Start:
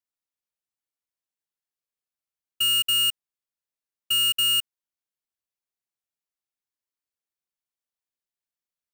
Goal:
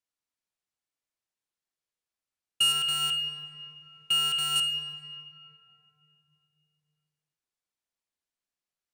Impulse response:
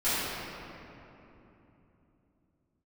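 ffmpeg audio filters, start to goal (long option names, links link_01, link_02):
-filter_complex "[0:a]lowpass=9900,asettb=1/sr,asplit=3[link_01][link_02][link_03];[link_01]atrim=end=2.724[link_04];[link_02]atrim=start=2.72:end=4.56,asetpts=PTS-STARTPTS,afade=type=in:duration=0.004:curve=qsin,afade=type=out:start_time=1.836:duration=0.004:curve=qsin,asplit=2[link_05][link_06];[link_06]highpass=frequency=720:poles=1,volume=23dB,asoftclip=type=tanh:threshold=-19.5dB[link_07];[link_05][link_07]amix=inputs=2:normalize=0,lowpass=frequency=3200:poles=1,volume=-6dB[link_08];[link_03]atrim=start=4.556[link_09];[link_04][link_08]acrossfade=duration=0.004:curve1=hsin:curve2=qsin[link_10];[link_10][link_09]acrossfade=duration=0.004:curve1=qsin:curve2=hsin,asplit=2[link_11][link_12];[1:a]atrim=start_sample=2205[link_13];[link_12][link_13]afir=irnorm=-1:irlink=0,volume=-17.5dB[link_14];[link_11][link_14]amix=inputs=2:normalize=0"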